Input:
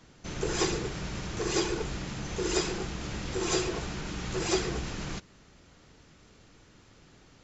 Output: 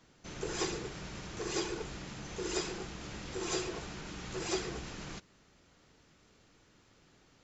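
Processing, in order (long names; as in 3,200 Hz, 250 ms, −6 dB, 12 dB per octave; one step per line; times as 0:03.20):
low-shelf EQ 160 Hz −5 dB
level −6 dB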